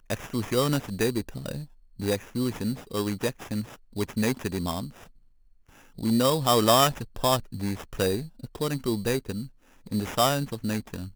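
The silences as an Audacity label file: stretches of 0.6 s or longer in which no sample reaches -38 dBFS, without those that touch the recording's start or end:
5.040000	5.980000	silence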